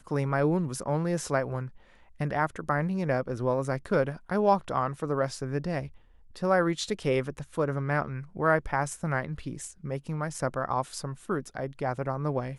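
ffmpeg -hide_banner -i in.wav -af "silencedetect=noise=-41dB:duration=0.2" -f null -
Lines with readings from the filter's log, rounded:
silence_start: 1.69
silence_end: 2.20 | silence_duration: 0.51
silence_start: 5.88
silence_end: 6.36 | silence_duration: 0.48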